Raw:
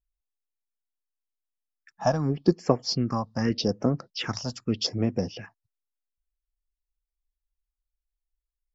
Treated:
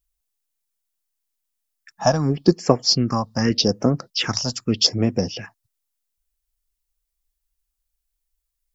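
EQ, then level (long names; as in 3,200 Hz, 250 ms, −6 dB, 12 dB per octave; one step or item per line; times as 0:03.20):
high-shelf EQ 4,500 Hz +10.5 dB
+5.5 dB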